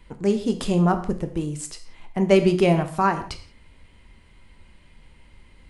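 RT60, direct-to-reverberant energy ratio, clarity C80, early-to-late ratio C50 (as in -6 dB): no single decay rate, 7.0 dB, 14.5 dB, 11.5 dB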